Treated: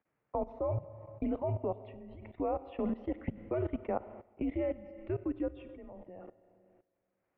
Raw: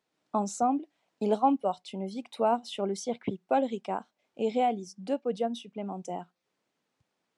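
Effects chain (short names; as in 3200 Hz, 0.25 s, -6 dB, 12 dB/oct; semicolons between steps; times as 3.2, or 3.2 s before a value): Schroeder reverb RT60 1.8 s, combs from 32 ms, DRR 11.5 dB; mistuned SSB -170 Hz 280–2500 Hz; level quantiser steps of 17 dB; gain +2.5 dB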